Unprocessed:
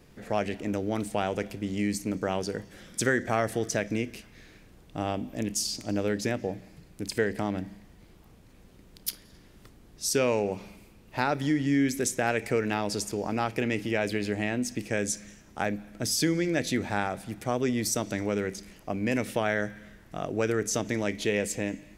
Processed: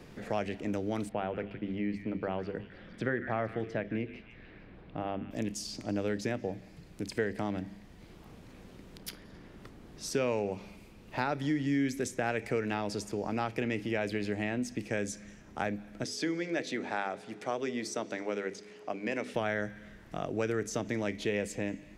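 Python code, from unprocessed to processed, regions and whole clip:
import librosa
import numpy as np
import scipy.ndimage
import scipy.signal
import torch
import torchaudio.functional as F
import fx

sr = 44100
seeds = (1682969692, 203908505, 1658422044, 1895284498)

y = fx.chain(x, sr, fx.air_absorb(metres=440.0),
    fx.hum_notches(base_hz=50, count=9),
    fx.echo_stepped(ms=152, hz=2000.0, octaves=0.7, feedback_pct=70, wet_db=-8), at=(1.09, 5.31))
y = fx.bandpass_edges(y, sr, low_hz=280.0, high_hz=7900.0, at=(16.03, 19.33), fade=0.02)
y = fx.hum_notches(y, sr, base_hz=50, count=10, at=(16.03, 19.33), fade=0.02)
y = fx.dmg_tone(y, sr, hz=420.0, level_db=-51.0, at=(16.03, 19.33), fade=0.02)
y = fx.high_shelf(y, sr, hz=7200.0, db=-10.5)
y = fx.band_squash(y, sr, depth_pct=40)
y = y * 10.0 ** (-4.0 / 20.0)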